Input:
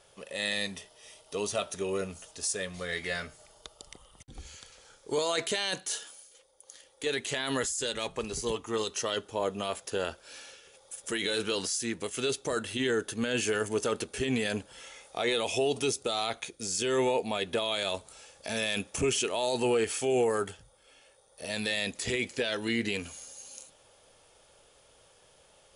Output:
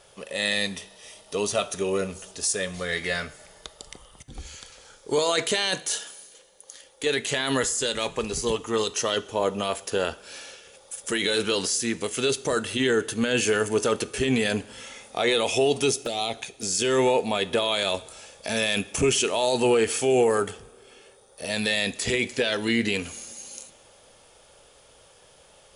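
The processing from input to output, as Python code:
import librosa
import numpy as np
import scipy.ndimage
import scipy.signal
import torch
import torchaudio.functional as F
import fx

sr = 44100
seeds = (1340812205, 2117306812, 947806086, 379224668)

y = fx.env_flanger(x, sr, rest_ms=6.1, full_db=-26.5, at=(15.97, 16.63))
y = fx.rev_double_slope(y, sr, seeds[0], early_s=0.59, late_s=2.7, knee_db=-14, drr_db=16.0)
y = y * 10.0 ** (6.0 / 20.0)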